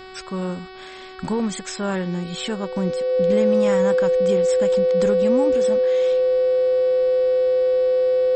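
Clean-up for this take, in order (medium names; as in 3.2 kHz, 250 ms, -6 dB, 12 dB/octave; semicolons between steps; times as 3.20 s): de-hum 375.1 Hz, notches 14; band-stop 510 Hz, Q 30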